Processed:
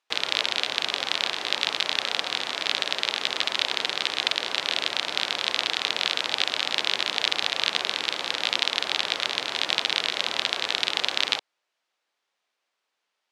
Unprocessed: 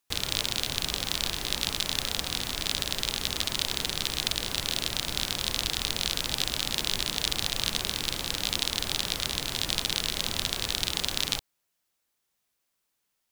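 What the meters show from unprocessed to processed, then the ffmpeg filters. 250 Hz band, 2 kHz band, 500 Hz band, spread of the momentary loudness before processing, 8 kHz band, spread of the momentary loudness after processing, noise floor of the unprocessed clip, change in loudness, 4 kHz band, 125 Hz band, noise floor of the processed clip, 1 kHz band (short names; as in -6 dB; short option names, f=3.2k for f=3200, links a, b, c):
-4.0 dB, +8.0 dB, +4.5 dB, 2 LU, -6.0 dB, 2 LU, -79 dBFS, +3.5 dB, +4.0 dB, under -15 dB, -81 dBFS, +7.0 dB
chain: -filter_complex "[0:a]asplit=2[a][b];[b]adynamicsmooth=sensitivity=1:basefreq=1.1k,volume=-7.5dB[c];[a][c]amix=inputs=2:normalize=0,highpass=540,lowpass=3.9k,volume=6dB"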